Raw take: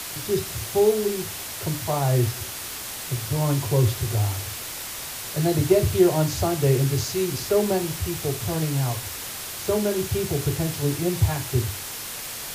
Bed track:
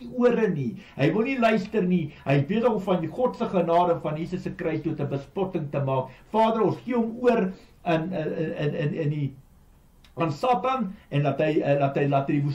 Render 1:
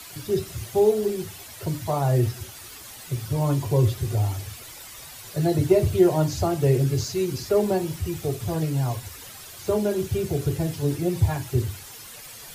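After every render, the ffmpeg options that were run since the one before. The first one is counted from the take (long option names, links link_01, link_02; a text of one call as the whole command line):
ffmpeg -i in.wav -af "afftdn=noise_reduction=11:noise_floor=-34" out.wav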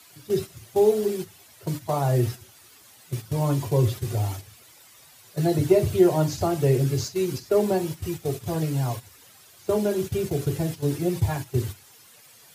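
ffmpeg -i in.wav -af "agate=range=-10dB:threshold=-29dB:ratio=16:detection=peak,highpass=100" out.wav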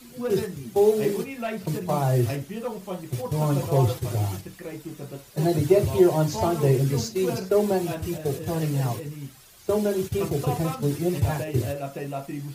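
ffmpeg -i in.wav -i bed.wav -filter_complex "[1:a]volume=-9.5dB[link_01];[0:a][link_01]amix=inputs=2:normalize=0" out.wav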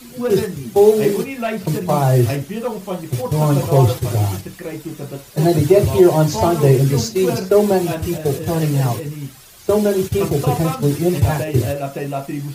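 ffmpeg -i in.wav -af "volume=8dB,alimiter=limit=-1dB:level=0:latency=1" out.wav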